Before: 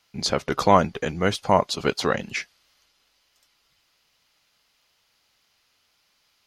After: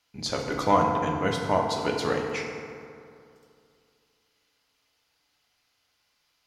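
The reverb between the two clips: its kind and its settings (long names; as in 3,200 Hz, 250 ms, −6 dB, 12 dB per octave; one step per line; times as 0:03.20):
feedback delay network reverb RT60 2.5 s, low-frequency decay 1×, high-frequency decay 0.45×, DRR 0 dB
level −7 dB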